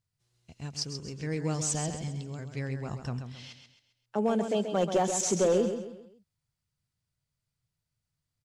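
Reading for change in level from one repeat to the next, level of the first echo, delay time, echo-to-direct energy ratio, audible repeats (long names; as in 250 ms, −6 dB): −8.0 dB, −8.0 dB, 133 ms, −7.5 dB, 4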